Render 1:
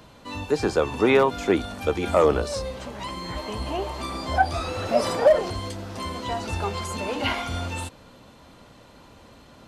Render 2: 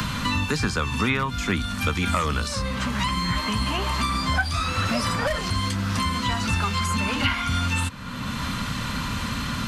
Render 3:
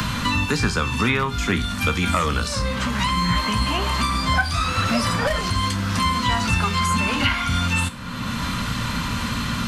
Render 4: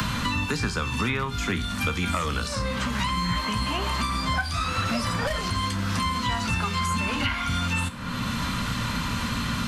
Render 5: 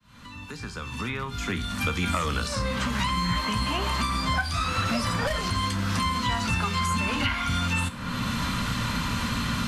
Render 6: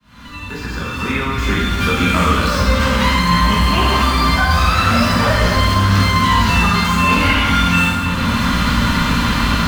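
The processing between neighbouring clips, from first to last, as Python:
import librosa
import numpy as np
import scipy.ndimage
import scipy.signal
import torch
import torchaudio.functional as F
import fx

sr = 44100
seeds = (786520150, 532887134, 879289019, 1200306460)

y1 = fx.band_shelf(x, sr, hz=510.0, db=-15.5, octaves=1.7)
y1 = fx.band_squash(y1, sr, depth_pct=100)
y1 = y1 * librosa.db_to_amplitude(6.0)
y2 = fx.comb_fb(y1, sr, f0_hz=58.0, decay_s=0.36, harmonics='all', damping=0.0, mix_pct=60)
y2 = y2 * librosa.db_to_amplitude(7.5)
y3 = fx.band_squash(y2, sr, depth_pct=70)
y3 = y3 * librosa.db_to_amplitude(-5.5)
y4 = fx.fade_in_head(y3, sr, length_s=2.04)
y5 = scipy.ndimage.median_filter(y4, 5, mode='constant')
y5 = fx.rev_plate(y5, sr, seeds[0], rt60_s=1.9, hf_ratio=0.75, predelay_ms=0, drr_db=-7.0)
y5 = y5 * librosa.db_to_amplitude(5.0)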